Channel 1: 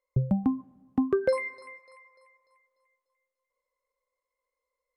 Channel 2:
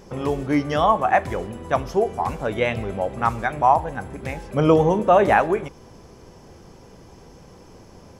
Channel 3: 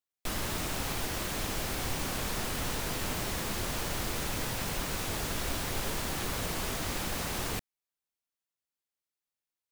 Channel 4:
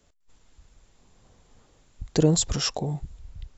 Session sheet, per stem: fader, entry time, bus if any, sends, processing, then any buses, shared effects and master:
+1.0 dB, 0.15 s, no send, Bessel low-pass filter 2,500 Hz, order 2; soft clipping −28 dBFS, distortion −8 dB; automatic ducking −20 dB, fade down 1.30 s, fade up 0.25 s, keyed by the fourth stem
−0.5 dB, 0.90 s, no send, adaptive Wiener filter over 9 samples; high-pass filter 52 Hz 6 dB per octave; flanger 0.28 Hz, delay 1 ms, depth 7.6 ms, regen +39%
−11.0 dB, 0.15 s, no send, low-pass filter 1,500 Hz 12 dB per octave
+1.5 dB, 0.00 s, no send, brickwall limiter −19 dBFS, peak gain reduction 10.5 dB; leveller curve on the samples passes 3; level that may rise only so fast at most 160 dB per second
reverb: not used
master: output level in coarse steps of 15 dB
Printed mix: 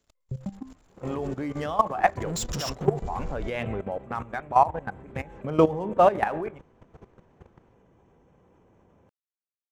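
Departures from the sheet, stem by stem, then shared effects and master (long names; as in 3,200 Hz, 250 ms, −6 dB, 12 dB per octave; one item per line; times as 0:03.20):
stem 1: missing soft clipping −28 dBFS, distortion −8 dB
stem 2: missing flanger 0.28 Hz, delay 1 ms, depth 7.6 ms, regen +39%
stem 3 −11.0 dB → −18.0 dB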